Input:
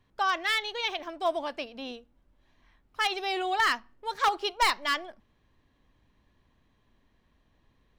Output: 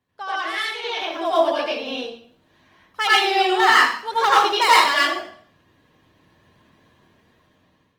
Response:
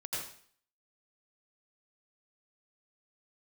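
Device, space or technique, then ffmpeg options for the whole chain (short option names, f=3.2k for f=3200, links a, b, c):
far-field microphone of a smart speaker: -filter_complex "[0:a]asettb=1/sr,asplit=3[a][b][c];[a]atrim=end=1.454[d];[b]atrim=start=1.45:end=1.95,asetpts=PTS-STARTPTS,afade=t=in:d=0.004:c=qsin,afade=t=out:st=0.496:d=0.004:c=qsin,highpass=f=230:p=1[e];[c]atrim=start=1.946[f];[d][e]acrossfade=d=0.004:c1=hsin:c2=qsin[g];[g][f]acrossfade=d=0.004:c1=qsin:c2=hsin[h];[1:a]atrim=start_sample=2205[i];[h][i]afir=irnorm=-1:irlink=0,highpass=120,dynaudnorm=f=490:g=5:m=13dB" -ar 48000 -c:a libopus -b:a 24k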